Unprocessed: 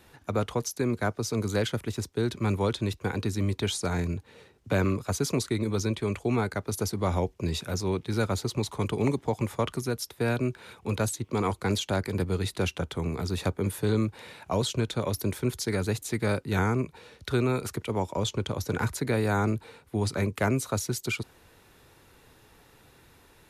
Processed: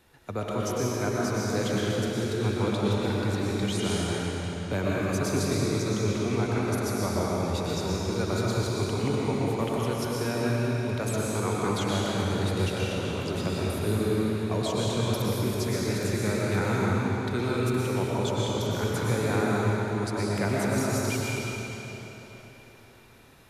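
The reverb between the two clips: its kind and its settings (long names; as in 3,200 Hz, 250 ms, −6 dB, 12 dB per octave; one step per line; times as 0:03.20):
comb and all-pass reverb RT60 3.9 s, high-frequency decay 0.9×, pre-delay 80 ms, DRR −6 dB
level −5 dB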